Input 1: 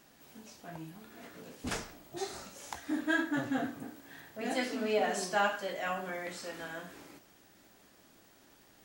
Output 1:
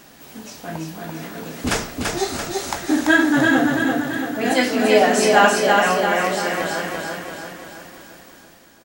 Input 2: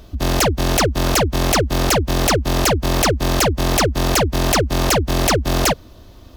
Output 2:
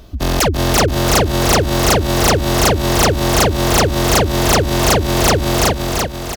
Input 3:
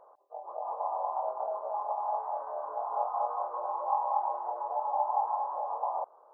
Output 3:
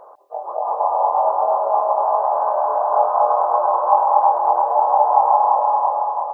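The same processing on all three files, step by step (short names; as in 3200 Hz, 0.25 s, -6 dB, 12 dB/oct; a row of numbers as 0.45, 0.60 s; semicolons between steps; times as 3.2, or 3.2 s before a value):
ending faded out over 0.90 s; on a send: feedback echo 0.338 s, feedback 53%, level -3 dB; on the sum: normalise peaks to -1.5 dBFS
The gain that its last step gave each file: +15.0, +1.5, +14.0 dB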